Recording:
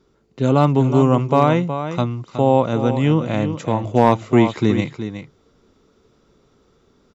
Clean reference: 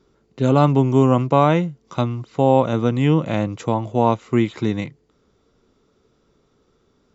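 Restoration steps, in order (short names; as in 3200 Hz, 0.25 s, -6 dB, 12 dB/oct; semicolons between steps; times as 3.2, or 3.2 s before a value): clip repair -2.5 dBFS; inverse comb 0.368 s -10 dB; gain 0 dB, from 3.84 s -4 dB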